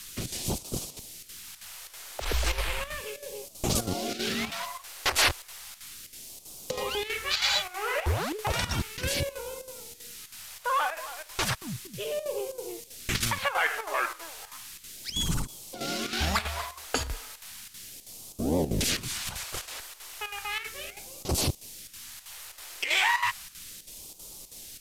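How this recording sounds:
a quantiser's noise floor 8 bits, dither triangular
chopped level 3.1 Hz, depth 65%, duty 80%
phaser sweep stages 2, 0.34 Hz, lowest notch 170–1,700 Hz
SBC

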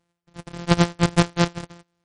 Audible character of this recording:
a buzz of ramps at a fixed pitch in blocks of 256 samples
MP3

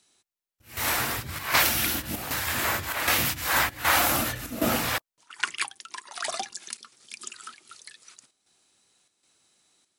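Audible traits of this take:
chopped level 1.3 Hz, depth 60%, duty 80%

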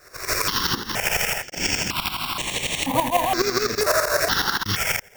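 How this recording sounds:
a buzz of ramps at a fixed pitch in blocks of 8 samples
tremolo saw up 12 Hz, depth 75%
aliases and images of a low sample rate 11,000 Hz, jitter 20%
notches that jump at a steady rate 2.1 Hz 850–5,100 Hz

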